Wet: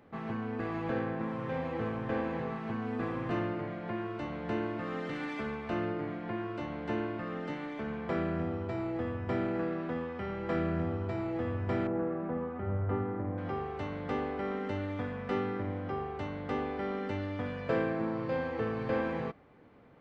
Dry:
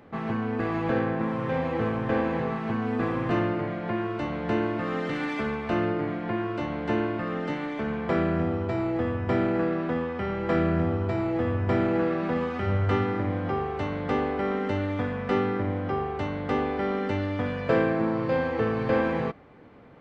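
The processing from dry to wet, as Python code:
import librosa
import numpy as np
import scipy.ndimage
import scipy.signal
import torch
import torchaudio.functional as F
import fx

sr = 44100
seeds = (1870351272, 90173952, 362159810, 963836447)

y = fx.lowpass(x, sr, hz=1200.0, slope=12, at=(11.87, 13.38))
y = y * librosa.db_to_amplitude(-7.5)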